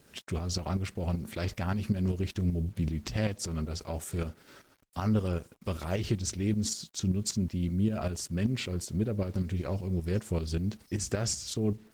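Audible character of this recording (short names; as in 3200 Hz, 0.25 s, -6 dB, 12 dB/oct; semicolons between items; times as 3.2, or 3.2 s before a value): tremolo saw up 5.2 Hz, depth 60%; a quantiser's noise floor 10-bit, dither none; Opus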